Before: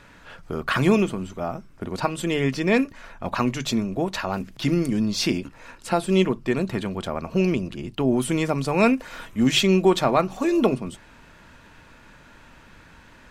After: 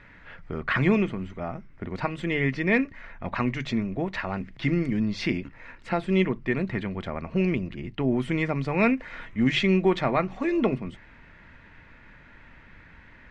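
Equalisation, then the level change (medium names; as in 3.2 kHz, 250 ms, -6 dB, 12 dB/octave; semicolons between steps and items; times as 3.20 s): low-pass 3.5 kHz 12 dB/octave; bass shelf 200 Hz +7 dB; peaking EQ 2 kHz +12 dB 0.47 oct; -6.0 dB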